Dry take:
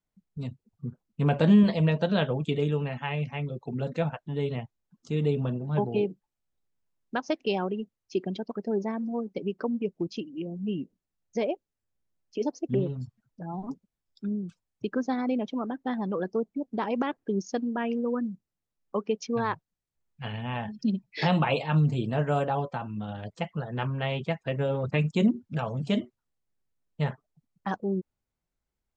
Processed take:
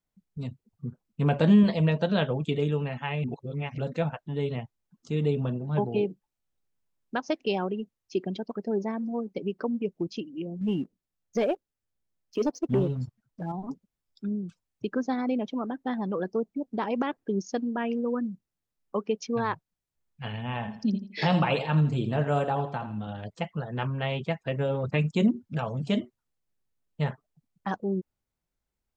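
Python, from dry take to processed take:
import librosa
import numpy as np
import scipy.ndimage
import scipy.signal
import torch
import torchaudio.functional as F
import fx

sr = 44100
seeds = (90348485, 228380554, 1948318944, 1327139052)

y = fx.leveller(x, sr, passes=1, at=(10.61, 13.52))
y = fx.echo_feedback(y, sr, ms=83, feedback_pct=32, wet_db=-12.0, at=(20.4, 23.07))
y = fx.edit(y, sr, fx.reverse_span(start_s=3.24, length_s=0.54), tone=tone)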